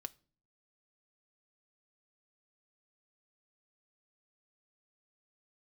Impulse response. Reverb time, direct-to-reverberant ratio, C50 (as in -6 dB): not exponential, 10.0 dB, 24.0 dB